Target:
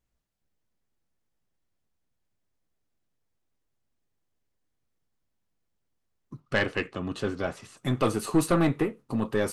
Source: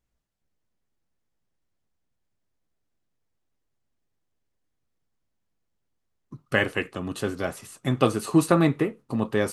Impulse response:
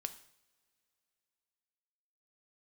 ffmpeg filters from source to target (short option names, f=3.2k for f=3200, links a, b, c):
-filter_complex "[0:a]asettb=1/sr,asplit=3[a][b][c];[a]atrim=end=6.404[d];[b]atrim=start=6.4:end=7.77,asetpts=PTS-STARTPTS,afade=t=in:d=0.004:c=qsin,afade=t=out:st=1.366:d=0.004:c=qsin,lowpass=5.7k[e];[c]atrim=start=7.766[f];[d][e]acrossfade=d=0.004:c1=hsin:c2=qsin[g];[g][f]acrossfade=d=0.004:c1=qsin:c2=hsin,aeval=exprs='(tanh(5.62*val(0)+0.3)-tanh(0.3))/5.62':c=same"